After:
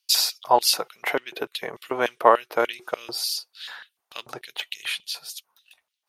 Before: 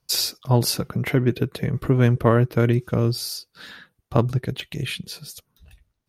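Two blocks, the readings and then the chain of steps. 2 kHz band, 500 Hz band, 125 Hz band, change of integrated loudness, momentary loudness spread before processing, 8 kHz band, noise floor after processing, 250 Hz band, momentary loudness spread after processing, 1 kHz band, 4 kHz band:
+2.5 dB, -1.0 dB, -33.0 dB, -2.0 dB, 16 LU, +2.0 dB, -81 dBFS, -15.0 dB, 19 LU, +7.5 dB, +3.5 dB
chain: dynamic bell 380 Hz, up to +6 dB, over -32 dBFS, Q 0.75; LFO high-pass square 3.4 Hz 820–3000 Hz; trim +1 dB

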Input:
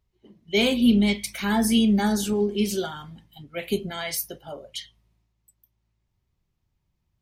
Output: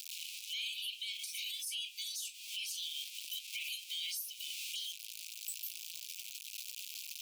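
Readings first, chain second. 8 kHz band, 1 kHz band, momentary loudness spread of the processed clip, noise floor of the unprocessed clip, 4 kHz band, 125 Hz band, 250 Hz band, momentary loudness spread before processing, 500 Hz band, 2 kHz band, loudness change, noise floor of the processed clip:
-6.0 dB, under -40 dB, 6 LU, -76 dBFS, -6.0 dB, under -40 dB, under -40 dB, 18 LU, under -40 dB, -13.0 dB, -16.5 dB, -51 dBFS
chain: jump at every zero crossing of -36.5 dBFS; steep high-pass 2.4 kHz 96 dB/octave; in parallel at -10.5 dB: overload inside the chain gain 22.5 dB; on the sum: compression 6:1, threshold -44 dBFS, peak gain reduction 21 dB; peak limiter -41.5 dBFS, peak gain reduction 10.5 dB; trim +10 dB

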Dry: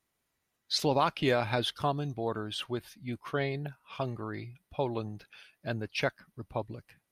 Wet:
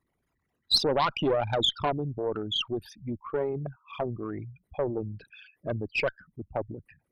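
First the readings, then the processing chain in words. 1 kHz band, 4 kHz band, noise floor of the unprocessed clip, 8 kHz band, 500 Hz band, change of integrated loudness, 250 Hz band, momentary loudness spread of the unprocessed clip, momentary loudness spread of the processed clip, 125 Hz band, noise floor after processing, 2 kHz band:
+1.5 dB, +7.5 dB, -81 dBFS, +0.5 dB, +3.5 dB, +3.5 dB, +1.5 dB, 15 LU, 15 LU, 0.0 dB, -79 dBFS, +0.5 dB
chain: resonances exaggerated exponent 3; Chebyshev shaper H 4 -16 dB, 5 -22 dB, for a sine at -16 dBFS; dynamic bell 3.8 kHz, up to +7 dB, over -47 dBFS, Q 1.2

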